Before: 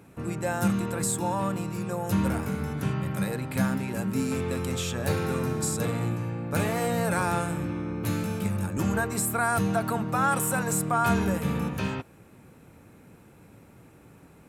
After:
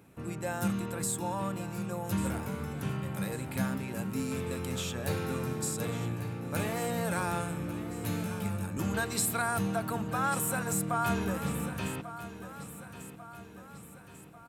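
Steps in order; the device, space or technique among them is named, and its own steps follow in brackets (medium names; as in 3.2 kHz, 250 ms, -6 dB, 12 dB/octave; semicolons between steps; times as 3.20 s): presence and air boost (peaking EQ 3.2 kHz +2.5 dB; treble shelf 12 kHz +6 dB); 8.94–9.42 s: peaking EQ 4.1 kHz +11.5 dB 1.3 oct; feedback delay 1144 ms, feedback 53%, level -13 dB; trim -6 dB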